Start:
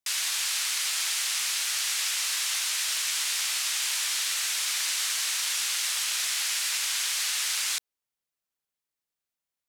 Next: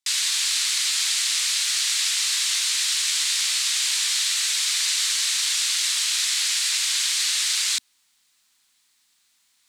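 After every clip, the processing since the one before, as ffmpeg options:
-af "equalizer=f=125:t=o:w=1:g=-6,equalizer=f=250:t=o:w=1:g=6,equalizer=f=500:t=o:w=1:g=-10,equalizer=f=1k:t=o:w=1:g=5,equalizer=f=2k:t=o:w=1:g=6,equalizer=f=4k:t=o:w=1:g=11,equalizer=f=8k:t=o:w=1:g=10,areverse,acompressor=mode=upward:threshold=-41dB:ratio=2.5,areverse,volume=-6dB"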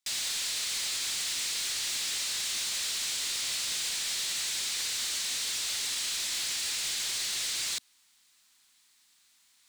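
-af "alimiter=limit=-18.5dB:level=0:latency=1:release=33,asoftclip=type=tanh:threshold=-29dB"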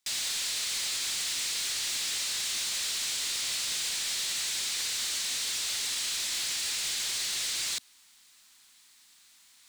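-af "alimiter=level_in=10.5dB:limit=-24dB:level=0:latency=1:release=11,volume=-10.5dB,volume=6dB"

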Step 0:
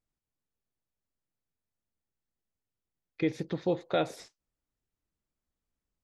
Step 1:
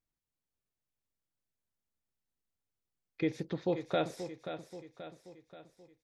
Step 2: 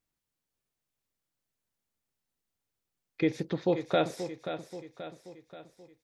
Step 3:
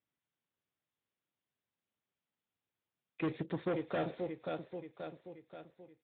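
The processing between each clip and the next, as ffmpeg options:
-af "aecho=1:1:531|1062|1593|2124|2655:0.316|0.158|0.0791|0.0395|0.0198,volume=-3dB"
-af "lowshelf=f=71:g=-6,volume=5dB"
-af "asoftclip=type=hard:threshold=-28.5dB,volume=-2.5dB" -ar 8000 -c:a libspeex -b:a 11k

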